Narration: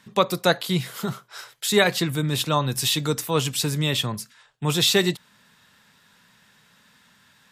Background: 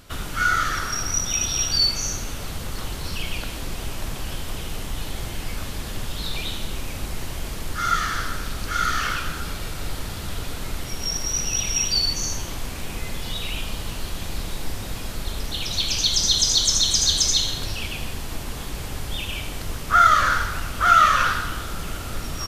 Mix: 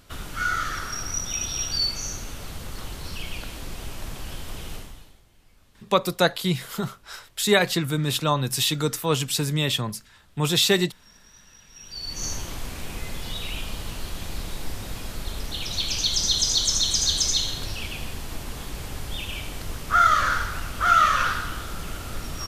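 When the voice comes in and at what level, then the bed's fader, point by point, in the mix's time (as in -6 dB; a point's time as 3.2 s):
5.75 s, -0.5 dB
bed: 4.75 s -5 dB
5.24 s -28.5 dB
11.67 s -28.5 dB
12.25 s -3 dB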